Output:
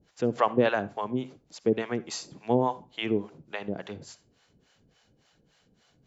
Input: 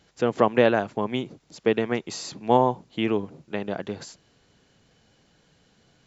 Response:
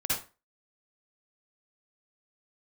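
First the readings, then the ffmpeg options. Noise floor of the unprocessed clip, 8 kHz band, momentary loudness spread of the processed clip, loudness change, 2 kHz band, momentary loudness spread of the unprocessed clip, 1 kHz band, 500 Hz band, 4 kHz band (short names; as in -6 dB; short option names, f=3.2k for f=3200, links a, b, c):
-64 dBFS, n/a, 14 LU, -4.0 dB, -4.0 dB, 14 LU, -5.0 dB, -4.5 dB, -3.5 dB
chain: -filter_complex "[0:a]acrossover=split=550[a][b];[a]aeval=exprs='val(0)*(1-1/2+1/2*cos(2*PI*3.5*n/s))':c=same[c];[b]aeval=exprs='val(0)*(1-1/2-1/2*cos(2*PI*3.5*n/s))':c=same[d];[c][d]amix=inputs=2:normalize=0,asplit=2[e][f];[1:a]atrim=start_sample=2205[g];[f][g]afir=irnorm=-1:irlink=0,volume=-24dB[h];[e][h]amix=inputs=2:normalize=0"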